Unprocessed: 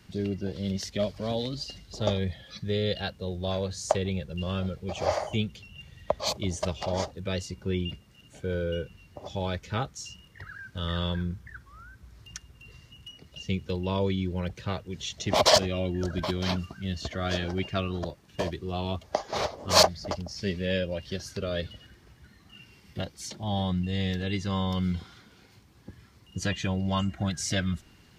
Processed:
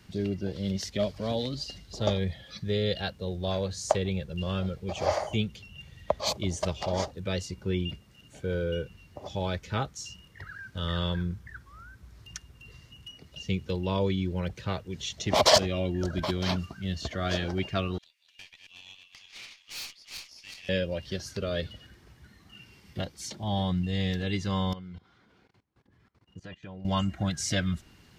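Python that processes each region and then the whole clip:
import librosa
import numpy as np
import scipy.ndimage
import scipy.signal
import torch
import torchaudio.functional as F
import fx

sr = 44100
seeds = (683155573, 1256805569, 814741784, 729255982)

y = fx.chain(x, sr, fx.reverse_delay_fb(ms=183, feedback_pct=60, wet_db=-5),
    fx.ladder_highpass(hz=2200.0, resonance_pct=60),
    fx.tube_stage(drive_db=36.0, bias=0.6), at=(17.98, 20.69))
y = fx.chain(y, sr, fx.lowpass(hz=1400.0, slope=6),
    fx.low_shelf(hz=230.0, db=-7.5),
    fx.level_steps(step_db=21), at=(24.73, 26.85))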